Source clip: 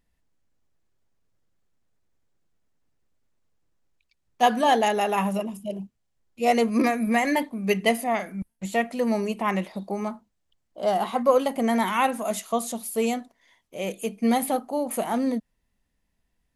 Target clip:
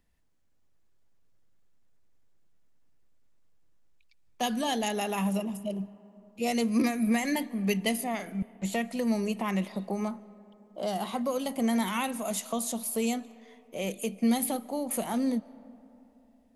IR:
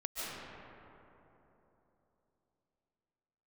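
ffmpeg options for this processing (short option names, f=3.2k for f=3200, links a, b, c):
-filter_complex "[0:a]acrossover=split=250|3000[a][b][c];[b]acompressor=threshold=-33dB:ratio=4[d];[a][d][c]amix=inputs=3:normalize=0,asplit=2[e][f];[1:a]atrim=start_sample=2205[g];[f][g]afir=irnorm=-1:irlink=0,volume=-23dB[h];[e][h]amix=inputs=2:normalize=0"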